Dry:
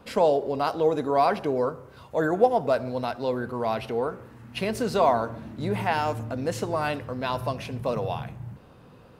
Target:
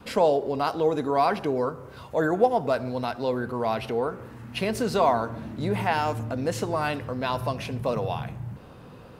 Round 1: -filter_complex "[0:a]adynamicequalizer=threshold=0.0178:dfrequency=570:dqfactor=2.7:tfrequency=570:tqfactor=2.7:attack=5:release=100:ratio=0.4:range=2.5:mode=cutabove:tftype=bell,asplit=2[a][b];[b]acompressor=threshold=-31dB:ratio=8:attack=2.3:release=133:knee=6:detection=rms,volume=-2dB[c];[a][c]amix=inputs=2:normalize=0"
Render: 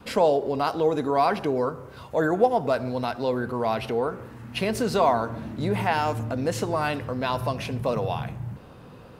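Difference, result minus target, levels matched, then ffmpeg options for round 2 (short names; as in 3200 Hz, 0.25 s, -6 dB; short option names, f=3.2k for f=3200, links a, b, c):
compressor: peak gain reduction -7 dB
-filter_complex "[0:a]adynamicequalizer=threshold=0.0178:dfrequency=570:dqfactor=2.7:tfrequency=570:tqfactor=2.7:attack=5:release=100:ratio=0.4:range=2.5:mode=cutabove:tftype=bell,asplit=2[a][b];[b]acompressor=threshold=-39dB:ratio=8:attack=2.3:release=133:knee=6:detection=rms,volume=-2dB[c];[a][c]amix=inputs=2:normalize=0"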